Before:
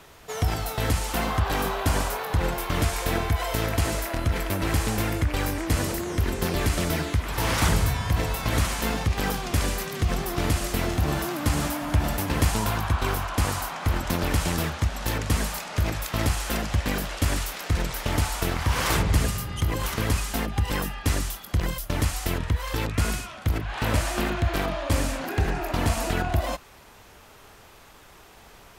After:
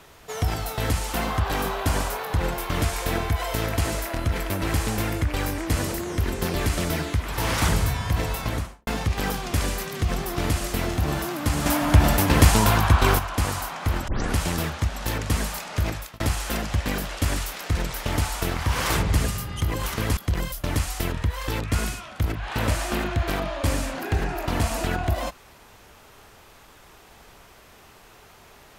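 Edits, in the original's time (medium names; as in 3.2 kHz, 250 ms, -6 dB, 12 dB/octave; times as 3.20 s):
8.37–8.87 s: studio fade out
11.66–13.19 s: gain +7 dB
14.08 s: tape start 0.28 s
15.89–16.20 s: fade out
20.17–21.43 s: delete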